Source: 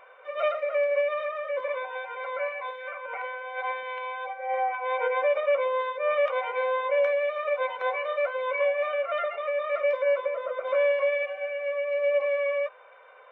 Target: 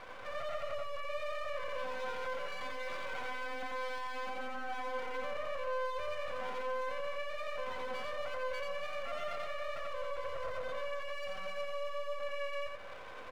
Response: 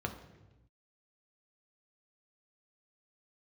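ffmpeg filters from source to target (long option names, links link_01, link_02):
-filter_complex "[0:a]acompressor=threshold=-36dB:ratio=6,alimiter=level_in=13.5dB:limit=-24dB:level=0:latency=1:release=18,volume=-13.5dB,aeval=exprs='max(val(0),0)':channel_layout=same,aecho=1:1:87.46|271.1:0.794|0.282,asplit=2[link_01][link_02];[1:a]atrim=start_sample=2205,asetrate=23373,aresample=44100[link_03];[link_02][link_03]afir=irnorm=-1:irlink=0,volume=-21.5dB[link_04];[link_01][link_04]amix=inputs=2:normalize=0,volume=5dB"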